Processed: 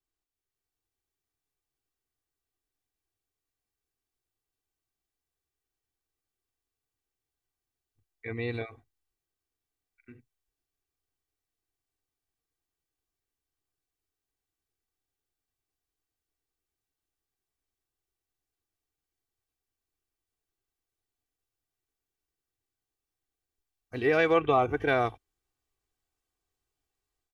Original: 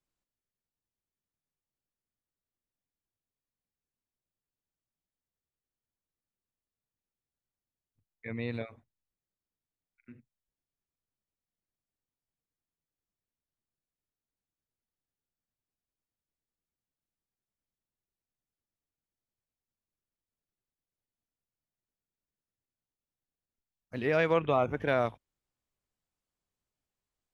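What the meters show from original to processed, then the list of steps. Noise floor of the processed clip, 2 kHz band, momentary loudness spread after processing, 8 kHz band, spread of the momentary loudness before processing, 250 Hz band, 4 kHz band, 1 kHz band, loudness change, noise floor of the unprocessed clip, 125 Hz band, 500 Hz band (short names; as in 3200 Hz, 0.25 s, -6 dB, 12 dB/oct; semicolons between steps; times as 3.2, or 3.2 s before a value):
under -85 dBFS, +4.5 dB, 18 LU, n/a, 17 LU, +2.5 dB, +4.0 dB, +4.5 dB, +3.0 dB, under -85 dBFS, 0.0 dB, +2.5 dB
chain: comb 2.6 ms, depth 69%; AGC gain up to 7 dB; gain -5 dB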